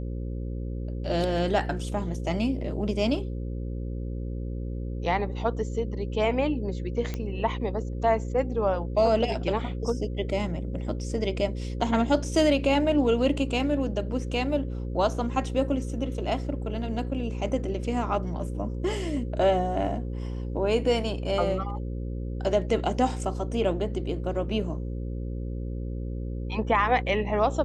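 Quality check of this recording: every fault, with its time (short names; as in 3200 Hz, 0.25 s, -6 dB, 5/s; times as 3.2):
buzz 60 Hz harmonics 9 -32 dBFS
7.14 pop -18 dBFS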